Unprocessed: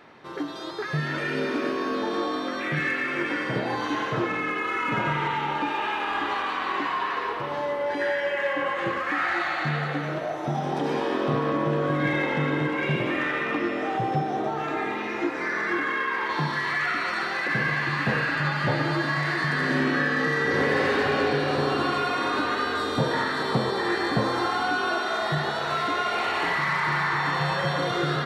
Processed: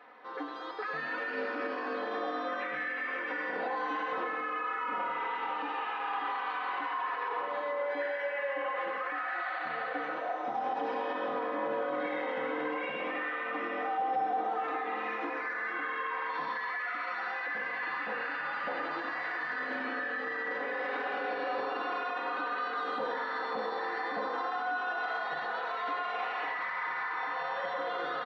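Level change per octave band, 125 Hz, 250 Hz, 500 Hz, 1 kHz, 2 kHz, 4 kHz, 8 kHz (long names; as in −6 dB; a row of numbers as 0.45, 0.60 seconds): below −30 dB, −15.0 dB, −8.5 dB, −5.5 dB, −8.0 dB, −14.0 dB, below −20 dB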